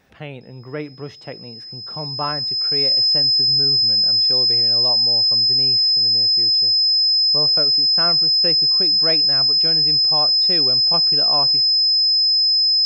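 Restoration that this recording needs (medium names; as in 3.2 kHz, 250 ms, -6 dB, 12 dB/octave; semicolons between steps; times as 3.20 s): band-stop 5.1 kHz, Q 30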